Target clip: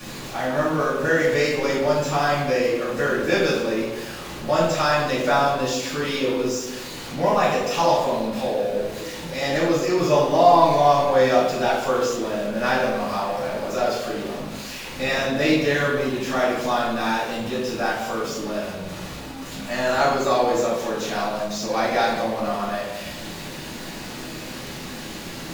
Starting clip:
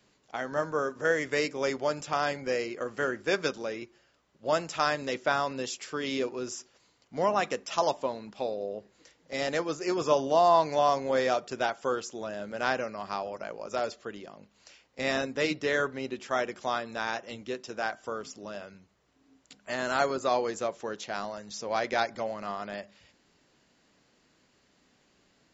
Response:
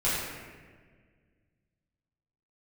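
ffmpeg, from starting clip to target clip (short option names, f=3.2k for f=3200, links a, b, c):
-filter_complex "[0:a]aeval=exprs='val(0)+0.5*0.0158*sgn(val(0))':c=same[a];[1:a]atrim=start_sample=2205,asetrate=74970,aresample=44100[b];[a][b]afir=irnorm=-1:irlink=0"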